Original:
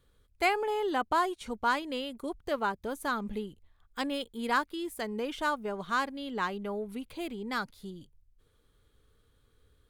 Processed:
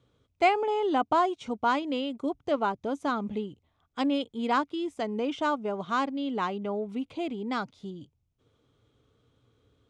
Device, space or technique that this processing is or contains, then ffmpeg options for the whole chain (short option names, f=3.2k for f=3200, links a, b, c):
car door speaker: -af "highpass=99,equalizer=f=120:t=q:w=4:g=8,equalizer=f=280:t=q:w=4:g=6,equalizer=f=690:t=q:w=4:g=5,equalizer=f=1.7k:t=q:w=4:g=-9,equalizer=f=4.4k:t=q:w=4:g=-7,lowpass=f=6.5k:w=0.5412,lowpass=f=6.5k:w=1.3066,volume=2.5dB"